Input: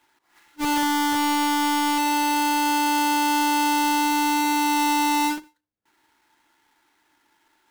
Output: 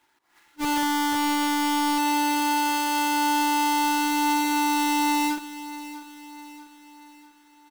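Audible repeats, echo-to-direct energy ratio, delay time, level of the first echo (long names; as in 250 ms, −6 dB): 4, −14.0 dB, 644 ms, −15.0 dB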